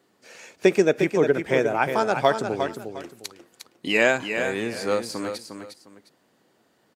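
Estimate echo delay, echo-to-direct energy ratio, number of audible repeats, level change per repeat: 355 ms, −7.0 dB, 2, −11.5 dB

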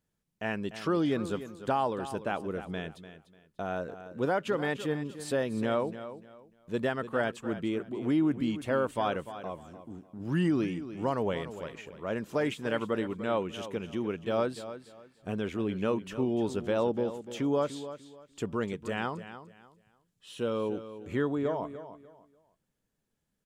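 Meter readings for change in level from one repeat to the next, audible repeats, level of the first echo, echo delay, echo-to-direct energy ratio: −11.5 dB, 2, −12.5 dB, 296 ms, −12.0 dB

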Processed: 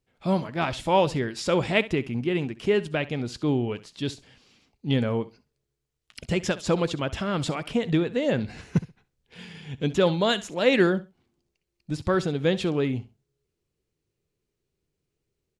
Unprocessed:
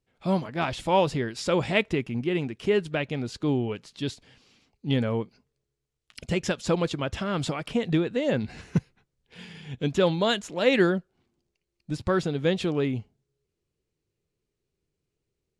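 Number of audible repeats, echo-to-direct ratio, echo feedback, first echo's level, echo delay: 2, −17.5 dB, 19%, −17.5 dB, 66 ms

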